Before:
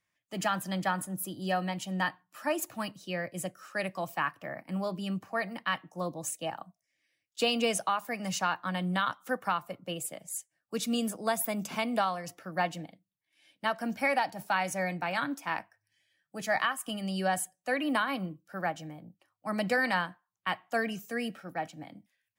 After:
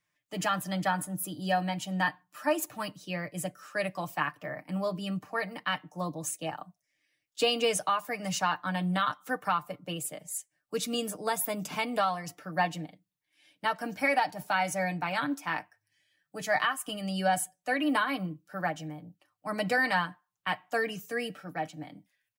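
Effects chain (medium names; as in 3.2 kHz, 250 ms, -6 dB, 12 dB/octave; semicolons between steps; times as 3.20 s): comb 6.7 ms, depth 56%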